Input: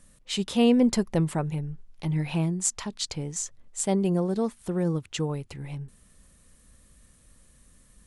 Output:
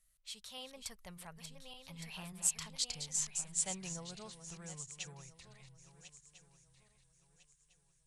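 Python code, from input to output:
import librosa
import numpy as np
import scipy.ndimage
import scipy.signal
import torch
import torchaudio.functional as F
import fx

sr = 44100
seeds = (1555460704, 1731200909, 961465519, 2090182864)

y = fx.reverse_delay_fb(x, sr, ms=627, feedback_pct=63, wet_db=-9)
y = fx.doppler_pass(y, sr, speed_mps=28, closest_m=27.0, pass_at_s=3.28)
y = fx.tone_stack(y, sr, knobs='10-0-10')
y = y * 10.0 ** (-2.5 / 20.0)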